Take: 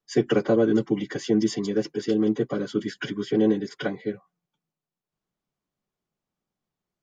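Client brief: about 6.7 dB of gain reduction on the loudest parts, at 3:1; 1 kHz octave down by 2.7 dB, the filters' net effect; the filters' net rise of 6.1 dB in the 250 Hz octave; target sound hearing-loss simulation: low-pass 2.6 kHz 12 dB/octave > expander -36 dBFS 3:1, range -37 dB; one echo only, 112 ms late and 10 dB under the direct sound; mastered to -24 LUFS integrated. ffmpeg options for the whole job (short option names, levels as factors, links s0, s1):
-af "equalizer=f=250:t=o:g=8.5,equalizer=f=1000:t=o:g=-5,acompressor=threshold=0.1:ratio=3,lowpass=2600,aecho=1:1:112:0.316,agate=range=0.0141:threshold=0.0158:ratio=3,volume=1.12"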